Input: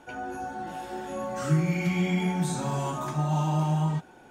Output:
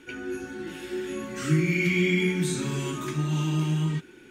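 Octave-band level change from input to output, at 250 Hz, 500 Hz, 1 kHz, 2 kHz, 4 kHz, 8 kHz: +1.5, +3.0, −9.5, +7.5, +6.0, +3.0 decibels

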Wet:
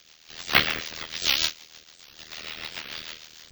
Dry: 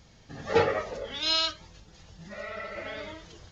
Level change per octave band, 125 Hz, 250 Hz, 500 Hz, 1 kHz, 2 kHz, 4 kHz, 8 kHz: −2.5 dB, −1.5 dB, −11.5 dB, −1.5 dB, +7.5 dB, +3.5 dB, can't be measured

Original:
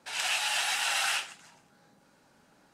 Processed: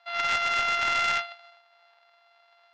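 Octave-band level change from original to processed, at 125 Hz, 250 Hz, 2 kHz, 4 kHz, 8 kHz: can't be measured, +7.5 dB, +4.0 dB, −2.0 dB, −10.0 dB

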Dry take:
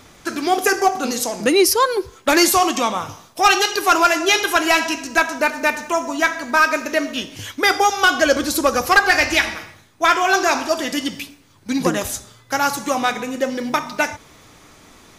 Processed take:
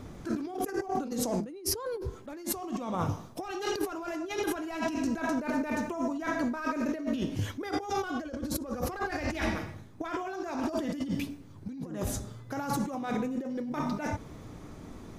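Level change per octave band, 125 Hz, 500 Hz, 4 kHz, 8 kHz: +0.5, −14.5, −21.5, −17.0 decibels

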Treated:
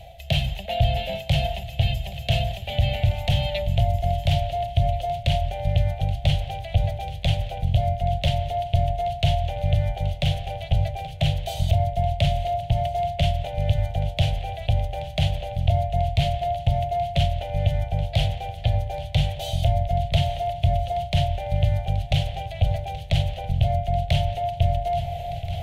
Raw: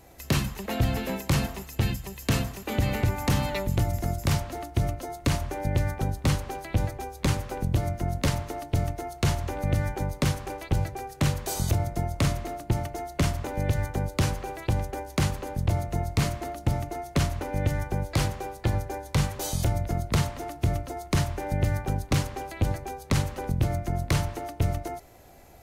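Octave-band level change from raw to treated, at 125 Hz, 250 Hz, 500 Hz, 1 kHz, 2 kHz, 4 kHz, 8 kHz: +4.0, −3.5, +5.5, +6.5, −0.5, +7.0, −9.5 decibels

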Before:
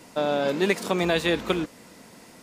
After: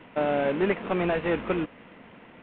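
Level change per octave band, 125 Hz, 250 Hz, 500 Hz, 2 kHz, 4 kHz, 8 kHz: −1.5 dB, −1.5 dB, −1.0 dB, −3.5 dB, −12.0 dB, below −40 dB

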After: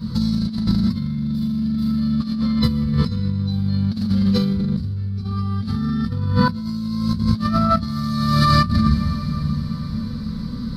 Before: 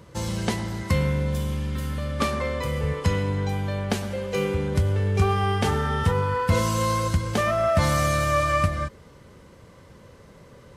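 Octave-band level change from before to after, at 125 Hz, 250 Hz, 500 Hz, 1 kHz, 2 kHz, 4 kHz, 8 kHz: +4.0 dB, +11.5 dB, −8.0 dB, +1.0 dB, −3.0 dB, +5.0 dB, can't be measured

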